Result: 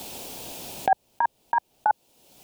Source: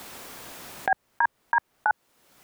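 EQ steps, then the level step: high-order bell 1.5 kHz -13 dB 1.2 oct; +5.0 dB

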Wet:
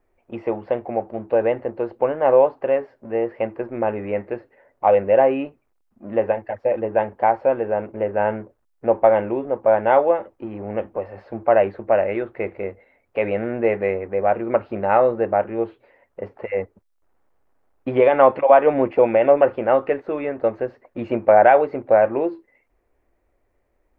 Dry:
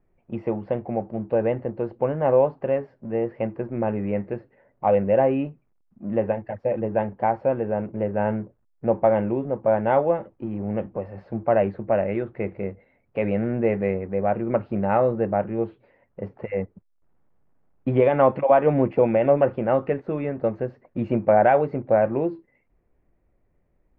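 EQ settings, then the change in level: peaking EQ 160 Hz -14 dB 0.78 oct; bass shelf 260 Hz -7.5 dB; +6.0 dB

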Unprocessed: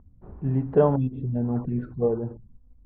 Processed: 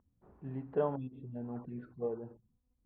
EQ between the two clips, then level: differentiator; tilt EQ -4.5 dB/octave; bass shelf 110 Hz -8 dB; +6.5 dB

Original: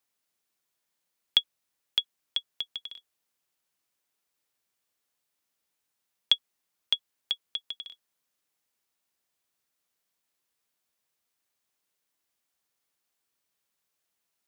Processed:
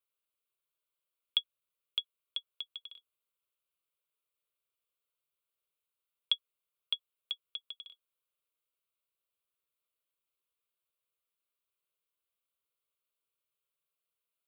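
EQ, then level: static phaser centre 1.2 kHz, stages 8; -6.5 dB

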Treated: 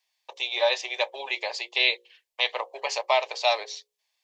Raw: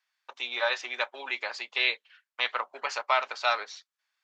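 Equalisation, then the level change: hum notches 60/120/180/240/300/360/420/480/540 Hz; static phaser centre 580 Hz, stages 4; +7.5 dB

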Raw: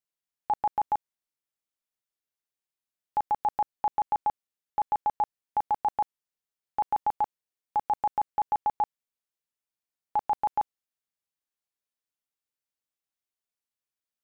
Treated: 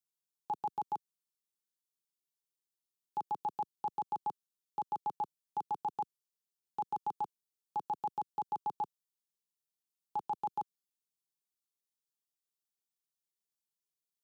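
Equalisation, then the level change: high-pass 130 Hz 12 dB/octave; high-order bell 970 Hz -8.5 dB 2.3 oct; static phaser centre 400 Hz, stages 8; 0.0 dB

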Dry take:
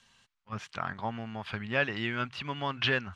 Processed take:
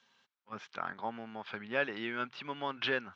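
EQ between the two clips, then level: distance through air 82 m; cabinet simulation 300–6100 Hz, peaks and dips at 670 Hz -4 dB, 1.1 kHz -4 dB, 1.9 kHz -5 dB, 2.8 kHz -6 dB, 4.5 kHz -4 dB; 0.0 dB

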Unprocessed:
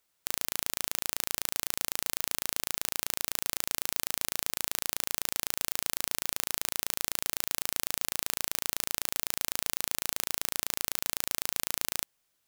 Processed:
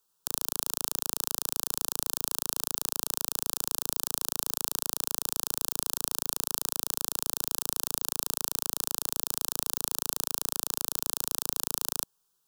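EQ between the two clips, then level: static phaser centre 420 Hz, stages 8; +2.5 dB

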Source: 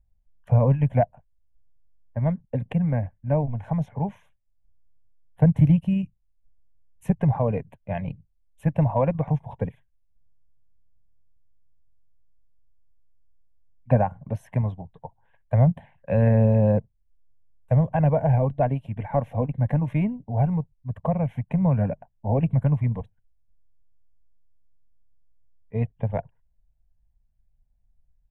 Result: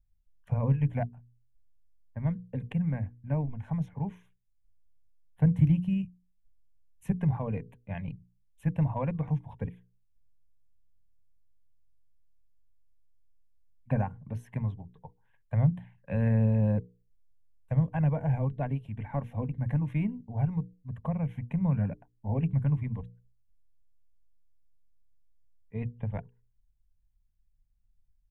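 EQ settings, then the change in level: peaking EQ 630 Hz -10 dB 1 oct; hum notches 60/120 Hz; hum notches 60/120/180/240/300/360/420/480 Hz; -4.5 dB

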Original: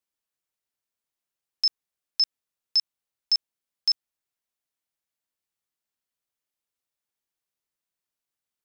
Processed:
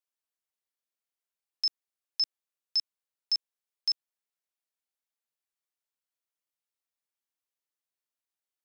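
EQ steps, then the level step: high-pass 330 Hz; -5.5 dB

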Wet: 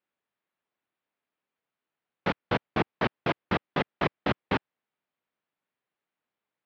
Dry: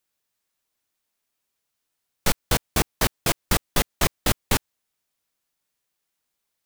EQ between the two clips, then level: band-pass 150–3700 Hz; distance through air 330 m; 0.0 dB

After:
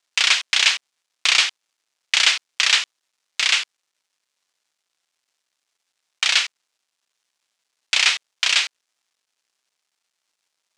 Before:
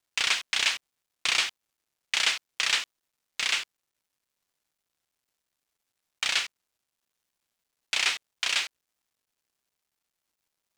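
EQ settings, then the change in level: high-pass 660 Hz 6 dB/octave; distance through air 87 m; treble shelf 4.7 kHz +11 dB; +7.5 dB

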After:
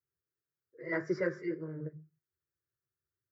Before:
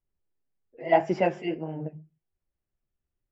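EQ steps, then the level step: high-pass 98 Hz 24 dB/octave; static phaser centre 850 Hz, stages 6; static phaser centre 2.6 kHz, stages 6; +1.5 dB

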